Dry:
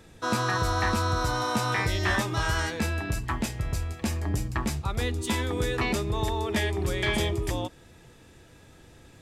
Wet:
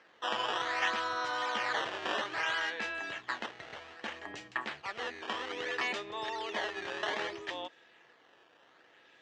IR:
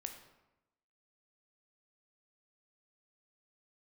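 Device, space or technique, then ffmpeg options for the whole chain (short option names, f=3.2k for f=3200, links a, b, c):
circuit-bent sampling toy: -af "acrusher=samples=12:mix=1:aa=0.000001:lfo=1:lforange=19.2:lforate=0.62,highpass=540,equalizer=f=1.8k:t=q:w=4:g=7,equalizer=f=3k:t=q:w=4:g=6,equalizer=f=5k:t=q:w=4:g=-4,lowpass=f=5.5k:w=0.5412,lowpass=f=5.5k:w=1.3066,volume=-5dB"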